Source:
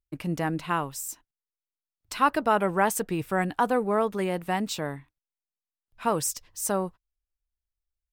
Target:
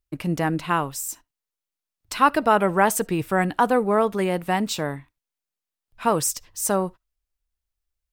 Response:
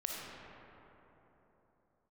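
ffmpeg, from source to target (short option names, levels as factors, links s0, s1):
-filter_complex "[0:a]asplit=2[s0][s1];[1:a]atrim=start_sample=2205,atrim=end_sample=3528[s2];[s1][s2]afir=irnorm=-1:irlink=0,volume=0.112[s3];[s0][s3]amix=inputs=2:normalize=0,volume=1.58"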